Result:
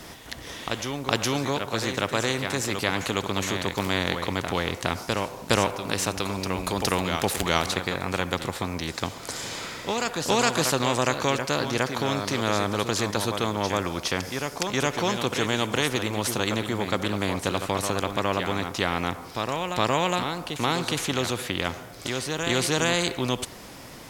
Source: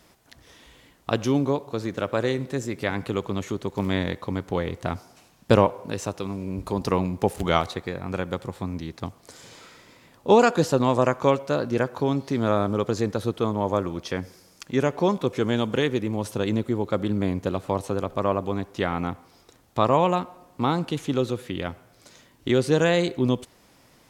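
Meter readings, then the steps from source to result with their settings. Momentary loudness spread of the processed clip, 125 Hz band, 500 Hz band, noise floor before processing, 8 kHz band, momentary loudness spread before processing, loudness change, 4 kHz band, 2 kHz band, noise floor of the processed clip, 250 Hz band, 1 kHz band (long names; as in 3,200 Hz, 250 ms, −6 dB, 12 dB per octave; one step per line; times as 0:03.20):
7 LU, −2.5 dB, −3.5 dB, −57 dBFS, +11.5 dB, 12 LU, −1.0 dB, +8.5 dB, +5.5 dB, −42 dBFS, −3.5 dB, 0.0 dB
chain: backwards echo 414 ms −10 dB
every bin compressed towards the loudest bin 2 to 1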